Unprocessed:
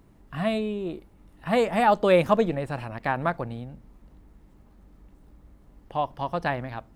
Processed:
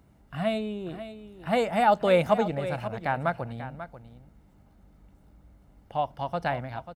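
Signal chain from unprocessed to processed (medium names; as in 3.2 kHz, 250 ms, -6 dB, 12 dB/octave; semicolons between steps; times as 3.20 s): high-pass 52 Hz; comb 1.4 ms, depth 34%; on a send: delay 540 ms -12.5 dB; on the sum: trim -2.5 dB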